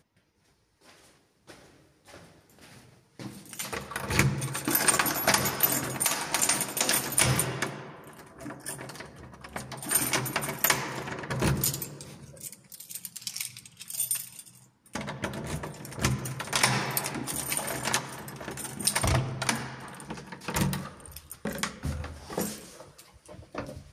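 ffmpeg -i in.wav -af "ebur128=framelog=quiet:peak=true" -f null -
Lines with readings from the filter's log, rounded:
Integrated loudness:
  I:         -28.5 LUFS
  Threshold: -40.2 LUFS
Loudness range:
  LRA:         9.8 LU
  Threshold: -49.7 LUFS
  LRA low:   -35.1 LUFS
  LRA high:  -25.4 LUFS
True peak:
  Peak:       -5.3 dBFS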